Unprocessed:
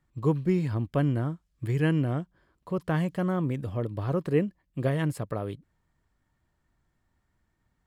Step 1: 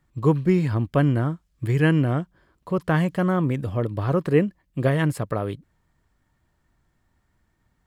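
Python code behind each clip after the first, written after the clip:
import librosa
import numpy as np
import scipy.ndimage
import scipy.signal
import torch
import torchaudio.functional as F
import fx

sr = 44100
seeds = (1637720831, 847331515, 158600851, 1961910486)

y = fx.dynamic_eq(x, sr, hz=1500.0, q=0.94, threshold_db=-43.0, ratio=4.0, max_db=3)
y = y * librosa.db_to_amplitude(5.5)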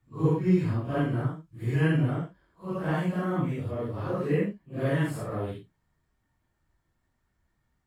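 y = fx.phase_scramble(x, sr, seeds[0], window_ms=200)
y = y * librosa.db_to_amplitude(-6.0)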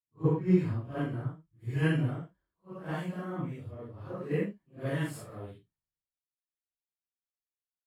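y = fx.band_widen(x, sr, depth_pct=100)
y = y * librosa.db_to_amplitude(-6.5)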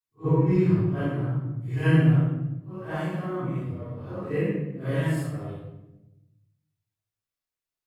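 y = fx.room_shoebox(x, sr, seeds[1], volume_m3=370.0, walls='mixed', distance_m=3.6)
y = y * librosa.db_to_amplitude(-4.5)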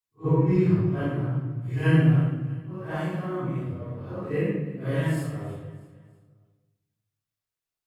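y = fx.echo_feedback(x, sr, ms=321, feedback_pct=40, wet_db=-18)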